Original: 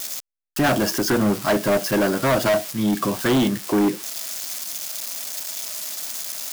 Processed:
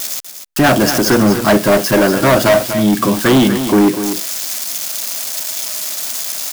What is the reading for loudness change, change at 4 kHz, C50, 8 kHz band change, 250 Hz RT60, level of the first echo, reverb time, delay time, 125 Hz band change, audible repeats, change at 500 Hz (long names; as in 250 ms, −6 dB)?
+8.5 dB, +8.5 dB, no reverb audible, +8.5 dB, no reverb audible, −9.5 dB, no reverb audible, 244 ms, +8.5 dB, 1, +8.5 dB